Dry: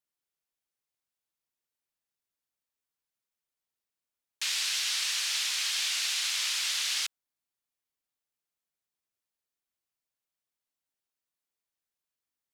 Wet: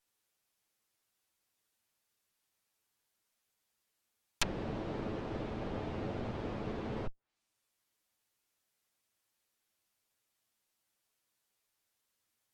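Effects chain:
lower of the sound and its delayed copy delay 9.2 ms
treble cut that deepens with the level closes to 470 Hz, closed at −33 dBFS
level +10 dB

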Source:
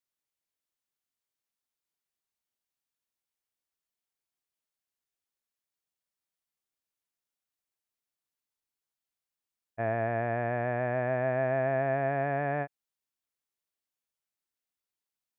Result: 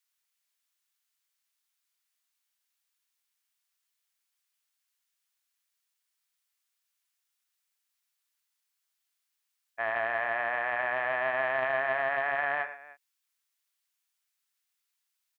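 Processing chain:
high-pass filter 1,300 Hz 12 dB per octave
multi-tap delay 43/106/299 ms −17.5/−11.5/−19 dB
highs frequency-modulated by the lows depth 0.13 ms
level +9 dB

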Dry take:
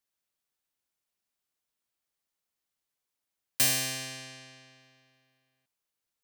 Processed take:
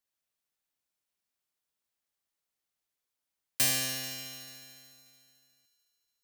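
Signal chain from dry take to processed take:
feedback echo with a high-pass in the loop 73 ms, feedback 84%, high-pass 420 Hz, level −12.5 dB
level −2 dB

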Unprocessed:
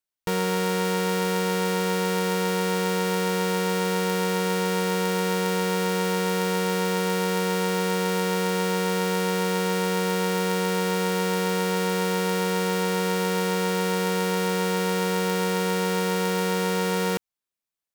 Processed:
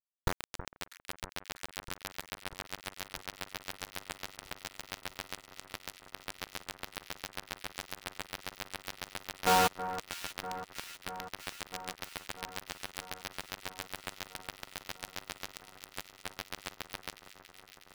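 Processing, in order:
gain on a spectral selection 0:09.47–0:09.68, 470–1,700 Hz +10 dB
RIAA equalisation playback
gate on every frequency bin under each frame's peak −20 dB strong
reverb reduction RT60 0.52 s
guitar amp tone stack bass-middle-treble 10-0-10
tuned comb filter 51 Hz, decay 0.43 s, harmonics all, mix 40%
hollow resonant body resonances 320/740/2,100 Hz, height 15 dB, ringing for 40 ms
bit reduction 5 bits
delay that swaps between a low-pass and a high-pass 322 ms, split 1,700 Hz, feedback 84%, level −11.5 dB
level +4.5 dB

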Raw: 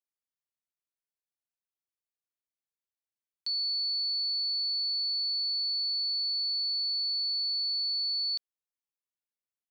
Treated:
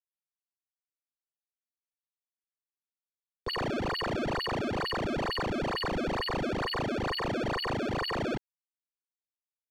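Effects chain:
sample-and-hold swept by an LFO 26×, swing 160% 2.2 Hz
low-pass filter 4,100 Hz 12 dB per octave
dead-zone distortion −58.5 dBFS

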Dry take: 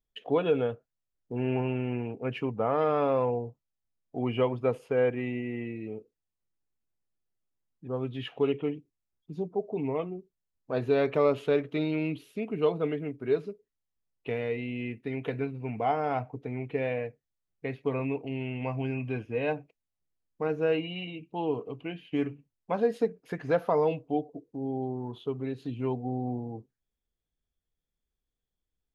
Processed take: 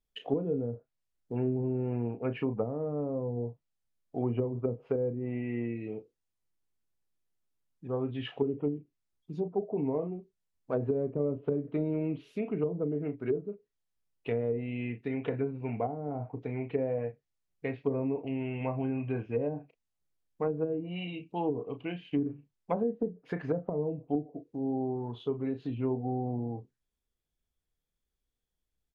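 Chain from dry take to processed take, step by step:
double-tracking delay 34 ms −9.5 dB
treble cut that deepens with the level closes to 310 Hz, closed at −23.5 dBFS

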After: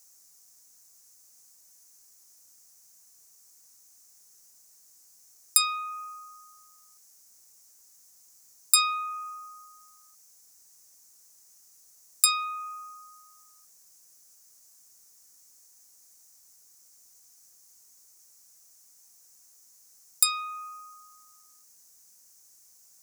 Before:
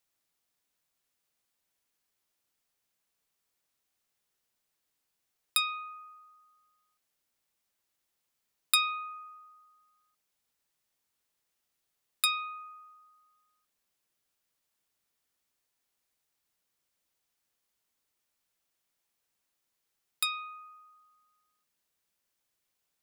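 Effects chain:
in parallel at −1 dB: downward compressor, threshold −45 dBFS, peak gain reduction 23.5 dB
on the sum: high shelf with overshoot 4,500 Hz +11.5 dB, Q 3
boost into a limiter +5.5 dB

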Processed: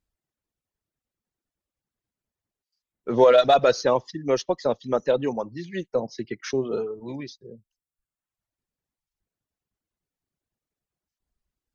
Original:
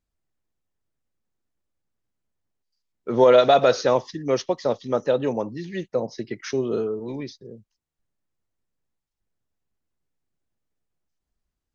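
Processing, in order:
harmonic generator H 8 −38 dB, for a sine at −4.5 dBFS
reverb reduction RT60 1 s

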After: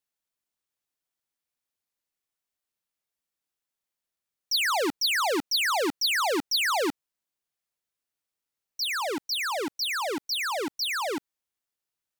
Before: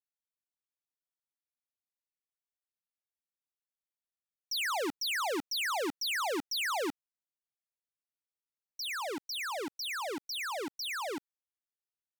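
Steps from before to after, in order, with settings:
dynamic equaliser 4,400 Hz, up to +5 dB, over −51 dBFS, Q 6
level +7 dB

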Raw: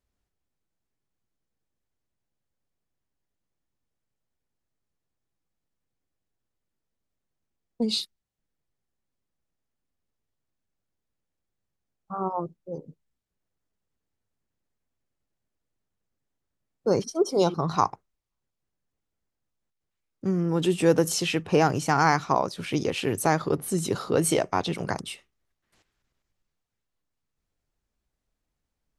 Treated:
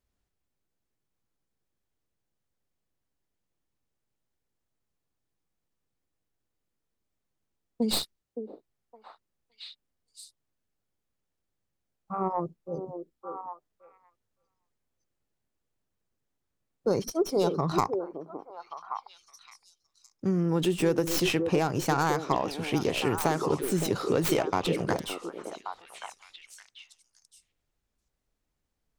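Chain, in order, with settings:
stylus tracing distortion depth 0.17 ms
downward compressor, threshold −21 dBFS, peak gain reduction 8 dB
on a send: echo through a band-pass that steps 565 ms, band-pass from 400 Hz, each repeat 1.4 octaves, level −4 dB

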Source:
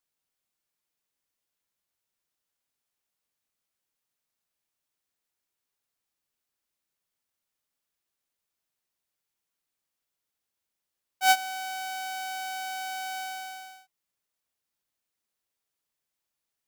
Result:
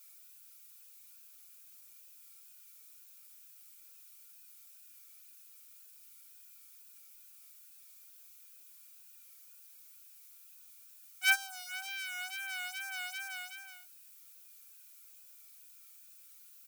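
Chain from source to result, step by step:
lower of the sound and its delayed copy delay 2.3 ms
inverse Chebyshev high-pass filter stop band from 500 Hz, stop band 40 dB
background noise violet −53 dBFS
hollow resonant body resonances 1,400/2,400 Hz, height 12 dB, ringing for 20 ms
tape wow and flutter 67 cents
barber-pole flanger 3.8 ms −2.6 Hz

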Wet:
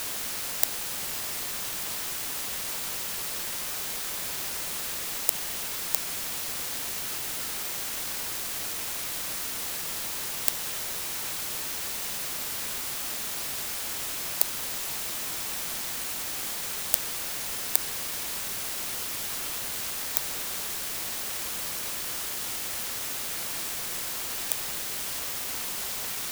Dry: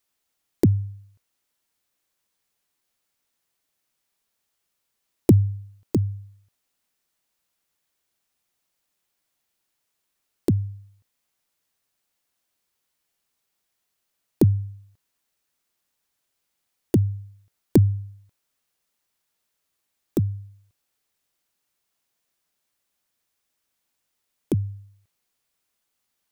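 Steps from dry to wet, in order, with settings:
Butterworth high-pass 640 Hz
spectral tilt +4 dB per octave
bit-depth reduction 6 bits, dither triangular
boost into a limiter +4 dB
level −1 dB

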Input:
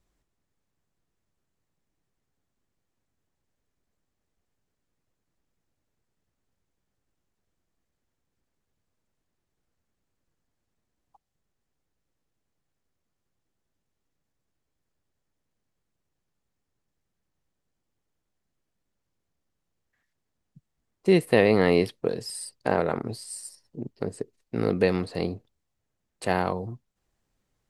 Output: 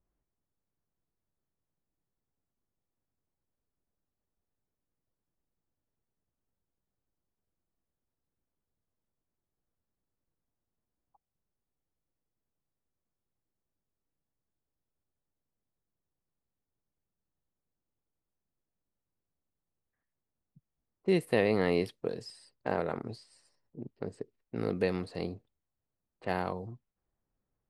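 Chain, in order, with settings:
low-pass that shuts in the quiet parts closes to 1,300 Hz, open at −24 dBFS
level −7.5 dB

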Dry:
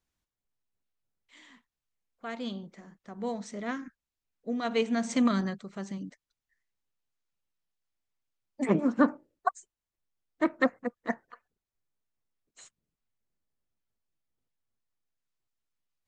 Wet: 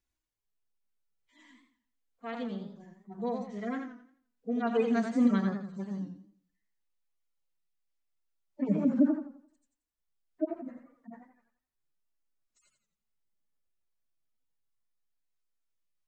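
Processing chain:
harmonic-percussive split with one part muted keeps harmonic
feedback echo with a swinging delay time 86 ms, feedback 36%, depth 117 cents, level −6.5 dB

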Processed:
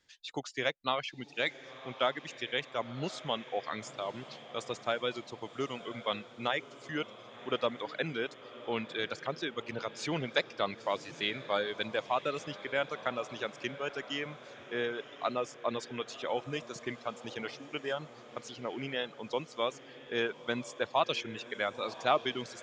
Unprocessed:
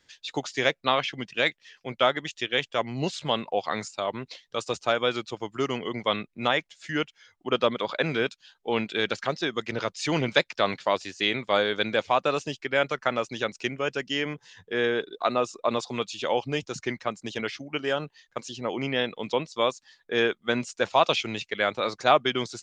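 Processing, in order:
reverb reduction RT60 1.1 s
feedback delay with all-pass diffusion 1,046 ms, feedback 58%, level −15 dB
level −7.5 dB

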